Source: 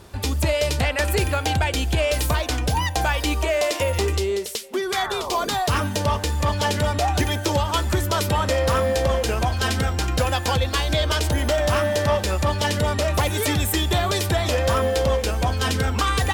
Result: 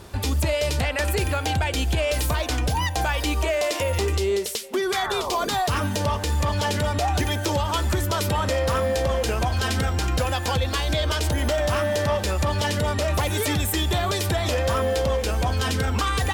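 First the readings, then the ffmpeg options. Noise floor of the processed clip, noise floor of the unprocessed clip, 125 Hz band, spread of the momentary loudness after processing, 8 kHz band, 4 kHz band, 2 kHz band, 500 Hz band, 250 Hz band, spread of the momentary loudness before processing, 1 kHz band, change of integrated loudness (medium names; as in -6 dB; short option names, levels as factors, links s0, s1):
-29 dBFS, -29 dBFS, -1.5 dB, 1 LU, -1.5 dB, -2.0 dB, -2.0 dB, -2.0 dB, -1.5 dB, 3 LU, -2.0 dB, -1.5 dB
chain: -af "alimiter=limit=0.119:level=0:latency=1:release=100,volume=1.33"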